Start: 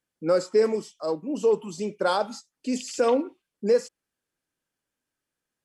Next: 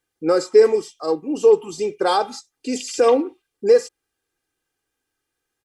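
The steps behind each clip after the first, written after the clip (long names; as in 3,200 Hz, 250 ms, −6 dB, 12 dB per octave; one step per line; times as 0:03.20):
comb filter 2.5 ms, depth 65%
level +4.5 dB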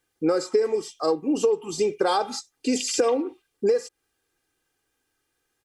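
downward compressor 10 to 1, threshold −22 dBFS, peak gain reduction 15 dB
level +3.5 dB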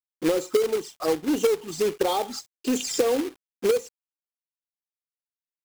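flanger swept by the level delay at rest 4.8 ms, full sweep at −21.5 dBFS
log-companded quantiser 4 bits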